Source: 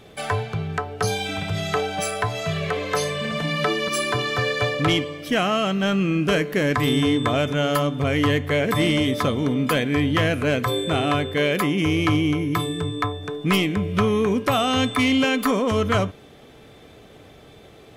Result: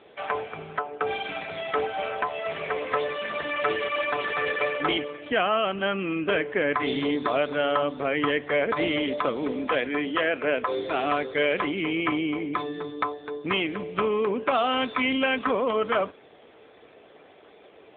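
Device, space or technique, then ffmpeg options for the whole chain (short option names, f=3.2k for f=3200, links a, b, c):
telephone: -filter_complex "[0:a]asplit=3[a][b][c];[a]afade=t=out:st=9.51:d=0.02[d];[b]highpass=210,afade=t=in:st=9.51:d=0.02,afade=t=out:st=11.03:d=0.02[e];[c]afade=t=in:st=11.03:d=0.02[f];[d][e][f]amix=inputs=3:normalize=0,highpass=390,lowpass=3.2k" -ar 8000 -c:a libopencore_amrnb -b:a 7950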